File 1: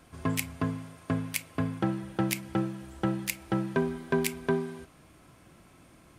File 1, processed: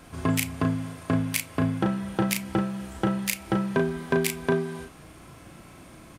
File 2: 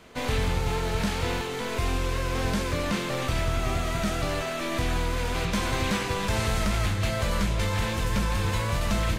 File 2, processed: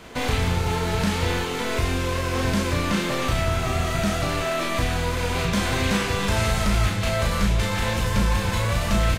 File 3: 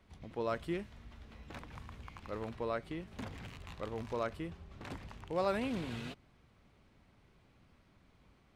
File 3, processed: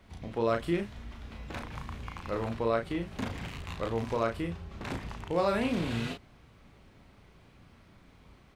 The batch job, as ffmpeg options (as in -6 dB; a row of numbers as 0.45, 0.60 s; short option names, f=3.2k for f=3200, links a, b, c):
-filter_complex "[0:a]asplit=2[a][b];[b]acompressor=threshold=-35dB:ratio=6,volume=2.5dB[c];[a][c]amix=inputs=2:normalize=0,asplit=2[d][e];[e]adelay=35,volume=-4.5dB[f];[d][f]amix=inputs=2:normalize=0"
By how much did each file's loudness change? +4.5, +4.0, +7.5 LU